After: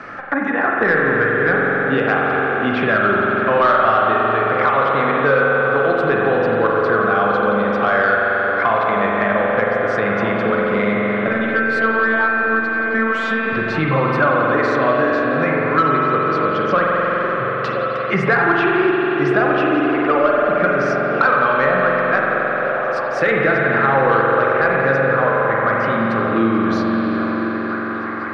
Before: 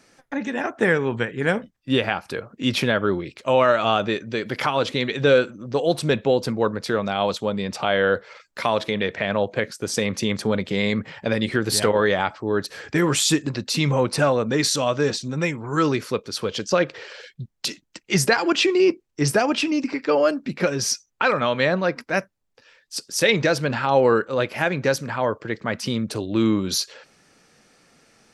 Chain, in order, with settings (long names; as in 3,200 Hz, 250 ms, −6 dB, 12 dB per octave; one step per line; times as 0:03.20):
low-pass filter 1,900 Hz 12 dB per octave
parametric band 1,300 Hz +14 dB 1.4 octaves
notch filter 930 Hz, Q 7.3
soft clipping −1.5 dBFS, distortion −23 dB
0:11.27–0:13.52: phases set to zero 223 Hz
echo through a band-pass that steps 512 ms, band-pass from 310 Hz, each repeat 0.7 octaves, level −6.5 dB
spring reverb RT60 3.4 s, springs 44 ms, chirp 45 ms, DRR −3 dB
multiband upward and downward compressor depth 70%
level −3.5 dB